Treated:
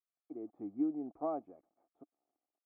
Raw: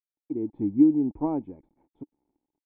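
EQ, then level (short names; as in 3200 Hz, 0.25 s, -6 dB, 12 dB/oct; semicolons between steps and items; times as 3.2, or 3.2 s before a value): double band-pass 920 Hz, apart 0.78 oct; +4.5 dB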